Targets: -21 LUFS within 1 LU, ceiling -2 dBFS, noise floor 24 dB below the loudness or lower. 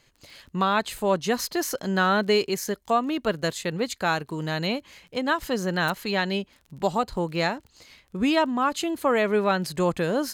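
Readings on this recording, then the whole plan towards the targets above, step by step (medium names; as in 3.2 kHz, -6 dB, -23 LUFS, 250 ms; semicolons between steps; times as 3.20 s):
tick rate 27 per s; loudness -25.5 LUFS; peak level -11.0 dBFS; loudness target -21.0 LUFS
-> de-click; trim +4.5 dB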